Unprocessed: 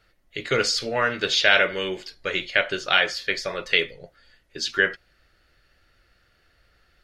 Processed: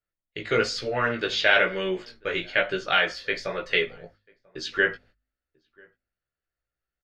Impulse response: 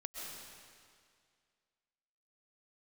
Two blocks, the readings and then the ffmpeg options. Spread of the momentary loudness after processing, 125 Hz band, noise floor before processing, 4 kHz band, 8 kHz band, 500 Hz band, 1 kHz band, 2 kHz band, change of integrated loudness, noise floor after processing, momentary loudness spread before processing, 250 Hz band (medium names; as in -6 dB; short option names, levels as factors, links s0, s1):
12 LU, 0.0 dB, -64 dBFS, -5.0 dB, -9.5 dB, 0.0 dB, -1.0 dB, -2.0 dB, -2.5 dB, under -85 dBFS, 12 LU, +0.5 dB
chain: -filter_complex "[0:a]lowpass=f=2300:p=1,agate=range=0.0447:threshold=0.00316:ratio=16:detection=peak,bandreject=f=50.86:t=h:w=4,bandreject=f=101.72:t=h:w=4,bandreject=f=152.58:t=h:w=4,bandreject=f=203.44:t=h:w=4,bandreject=f=254.3:t=h:w=4,flanger=delay=15.5:depth=3:speed=1.1,asplit=2[s0][s1];[s1]adelay=991.3,volume=0.0398,highshelf=f=4000:g=-22.3[s2];[s0][s2]amix=inputs=2:normalize=0,volume=1.41"